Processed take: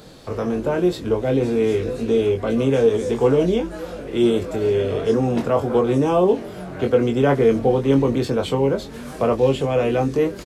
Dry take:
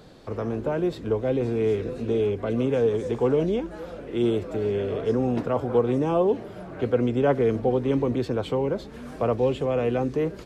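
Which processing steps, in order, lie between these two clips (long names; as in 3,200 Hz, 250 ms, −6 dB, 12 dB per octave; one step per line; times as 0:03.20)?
high-shelf EQ 4,500 Hz +9.5 dB
double-tracking delay 22 ms −5 dB
level +4 dB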